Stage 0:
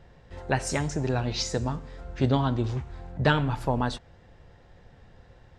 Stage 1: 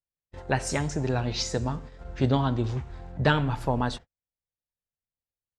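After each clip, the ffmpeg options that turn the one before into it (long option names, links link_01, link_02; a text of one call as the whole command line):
ffmpeg -i in.wav -af "agate=range=-49dB:threshold=-40dB:ratio=16:detection=peak" out.wav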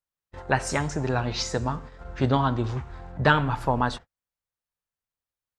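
ffmpeg -i in.wav -af "equalizer=frequency=1200:width_type=o:width=1.3:gain=7" out.wav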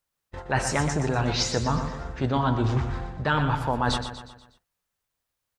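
ffmpeg -i in.wav -af "areverse,acompressor=threshold=-31dB:ratio=6,areverse,aecho=1:1:121|242|363|484|605:0.355|0.17|0.0817|0.0392|0.0188,volume=9dB" out.wav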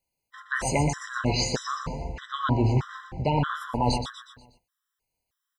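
ffmpeg -i in.wav -af "afftfilt=real='re*gt(sin(2*PI*1.6*pts/sr)*(1-2*mod(floor(b*sr/1024/1000),2)),0)':imag='im*gt(sin(2*PI*1.6*pts/sr)*(1-2*mod(floor(b*sr/1024/1000),2)),0)':win_size=1024:overlap=0.75,volume=2dB" out.wav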